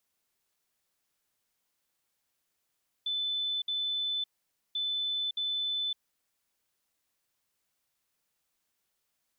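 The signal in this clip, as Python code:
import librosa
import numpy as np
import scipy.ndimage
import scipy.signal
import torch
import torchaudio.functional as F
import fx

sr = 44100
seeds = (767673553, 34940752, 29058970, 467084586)

y = fx.beep_pattern(sr, wave='sine', hz=3510.0, on_s=0.56, off_s=0.06, beeps=2, pause_s=0.51, groups=2, level_db=-29.0)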